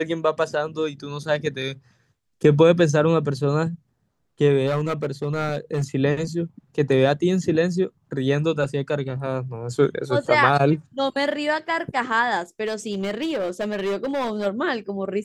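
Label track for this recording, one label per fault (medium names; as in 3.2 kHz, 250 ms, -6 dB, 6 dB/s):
4.660000	5.840000	clipped -18.5 dBFS
12.650000	14.470000	clipped -21 dBFS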